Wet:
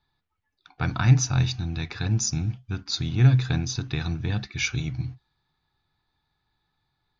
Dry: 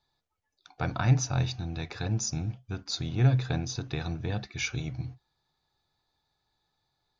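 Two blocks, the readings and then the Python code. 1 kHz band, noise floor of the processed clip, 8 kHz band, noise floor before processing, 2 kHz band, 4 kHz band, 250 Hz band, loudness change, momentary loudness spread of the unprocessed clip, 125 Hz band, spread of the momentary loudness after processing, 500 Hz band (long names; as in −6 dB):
+1.5 dB, −77 dBFS, can't be measured, −80 dBFS, +5.0 dB, +5.5 dB, +4.5 dB, +5.5 dB, 11 LU, +5.5 dB, 11 LU, −1.0 dB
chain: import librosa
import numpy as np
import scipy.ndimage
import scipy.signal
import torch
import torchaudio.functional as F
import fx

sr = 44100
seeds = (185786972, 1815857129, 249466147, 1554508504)

y = fx.env_lowpass(x, sr, base_hz=2900.0, full_db=-24.0)
y = fx.peak_eq(y, sr, hz=570.0, db=-10.5, octaves=1.1)
y = y * 10.0 ** (6.0 / 20.0)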